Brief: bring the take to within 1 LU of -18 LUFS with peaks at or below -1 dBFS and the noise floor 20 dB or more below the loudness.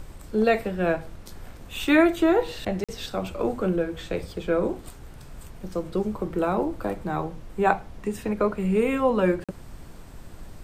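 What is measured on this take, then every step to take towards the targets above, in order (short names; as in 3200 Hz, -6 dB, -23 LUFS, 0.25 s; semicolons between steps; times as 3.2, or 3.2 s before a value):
dropouts 2; longest dropout 46 ms; noise floor -44 dBFS; noise floor target -46 dBFS; loudness -25.5 LUFS; peak -4.5 dBFS; loudness target -18.0 LUFS
-> interpolate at 2.84/9.44, 46 ms; noise print and reduce 6 dB; gain +7.5 dB; limiter -1 dBFS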